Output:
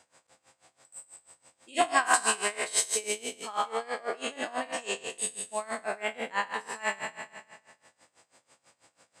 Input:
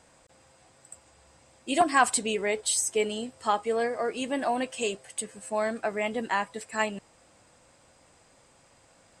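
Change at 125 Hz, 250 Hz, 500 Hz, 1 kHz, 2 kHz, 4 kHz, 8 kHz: can't be measured, −10.0 dB, −6.0 dB, −2.5 dB, 0.0 dB, 0.0 dB, +0.5 dB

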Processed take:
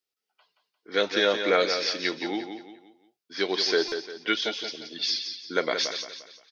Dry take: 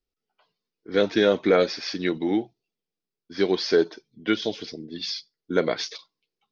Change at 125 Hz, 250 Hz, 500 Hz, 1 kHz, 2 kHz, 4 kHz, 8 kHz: −12.0 dB, −7.5 dB, −4.0 dB, +1.0 dB, +3.0 dB, +4.5 dB, can't be measured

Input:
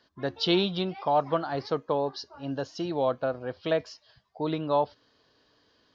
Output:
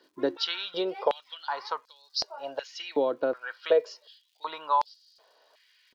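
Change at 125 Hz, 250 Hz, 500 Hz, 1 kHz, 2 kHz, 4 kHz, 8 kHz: below −20 dB, −7.5 dB, −1.0 dB, −0.5 dB, +0.5 dB, 0.0 dB, can't be measured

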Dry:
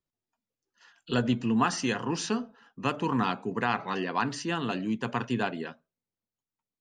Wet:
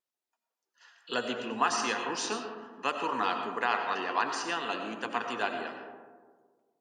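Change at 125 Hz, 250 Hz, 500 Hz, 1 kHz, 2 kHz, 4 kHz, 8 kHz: −19.5, −10.5, −1.5, +1.0, +1.0, +1.0, +0.5 decibels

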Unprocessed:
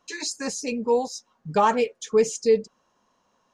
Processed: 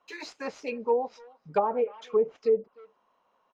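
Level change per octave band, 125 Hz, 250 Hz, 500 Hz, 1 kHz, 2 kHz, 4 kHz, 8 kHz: −11.5 dB, −10.0 dB, −4.0 dB, −6.0 dB, −8.5 dB, below −10 dB, below −20 dB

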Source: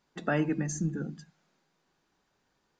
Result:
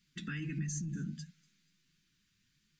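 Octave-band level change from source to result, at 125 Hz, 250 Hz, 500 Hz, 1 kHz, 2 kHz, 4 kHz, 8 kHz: −4.5 dB, −9.0 dB, −22.5 dB, below −15 dB, −8.5 dB, −1.0 dB, −3.0 dB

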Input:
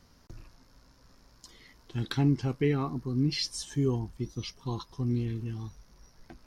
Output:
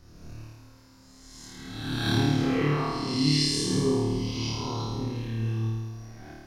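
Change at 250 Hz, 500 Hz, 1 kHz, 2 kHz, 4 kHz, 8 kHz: +4.0, +4.0, +7.5, +8.5, +8.5, +7.5 decibels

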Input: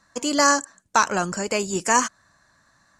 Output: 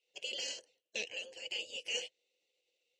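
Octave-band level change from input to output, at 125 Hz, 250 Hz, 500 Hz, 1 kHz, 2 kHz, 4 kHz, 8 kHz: below −35 dB, −36.0 dB, −22.0 dB, below −40 dB, −17.5 dB, −7.5 dB, −22.0 dB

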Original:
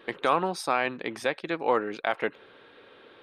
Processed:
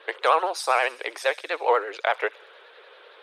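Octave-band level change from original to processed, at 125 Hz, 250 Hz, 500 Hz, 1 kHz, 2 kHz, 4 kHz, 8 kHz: below −40 dB, −11.0 dB, +3.0 dB, +4.5 dB, +4.5 dB, +4.5 dB, +5.0 dB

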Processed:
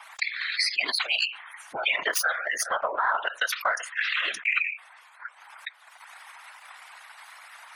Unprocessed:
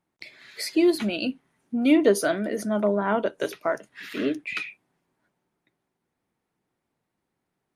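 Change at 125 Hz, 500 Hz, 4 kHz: below −25 dB, −12.0 dB, +8.0 dB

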